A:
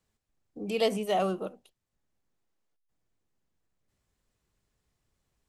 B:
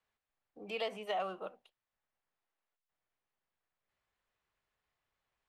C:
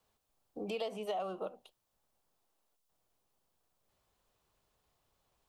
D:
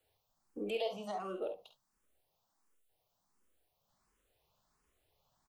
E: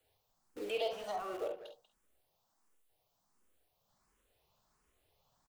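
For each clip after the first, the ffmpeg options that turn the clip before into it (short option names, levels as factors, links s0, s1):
-filter_complex "[0:a]acrossover=split=590 3600:gain=0.158 1 0.141[s0][s1][s2];[s0][s1][s2]amix=inputs=3:normalize=0,alimiter=level_in=1.41:limit=0.0631:level=0:latency=1:release=263,volume=0.708"
-af "equalizer=f=1900:w=1.1:g=-12.5,acompressor=threshold=0.00316:ratio=3,volume=3.98"
-filter_complex "[0:a]asplit=2[s0][s1];[s1]aecho=0:1:49|68:0.398|0.251[s2];[s0][s2]amix=inputs=2:normalize=0,asplit=2[s3][s4];[s4]afreqshift=1.4[s5];[s3][s5]amix=inputs=2:normalize=1,volume=1.26"
-filter_complex "[0:a]acrossover=split=300|3200[s0][s1][s2];[s0]aeval=exprs='(mod(473*val(0)+1,2)-1)/473':c=same[s3];[s3][s1][s2]amix=inputs=3:normalize=0,asplit=2[s4][s5];[s5]adelay=190,highpass=300,lowpass=3400,asoftclip=type=hard:threshold=0.0158,volume=0.251[s6];[s4][s6]amix=inputs=2:normalize=0,volume=1.19"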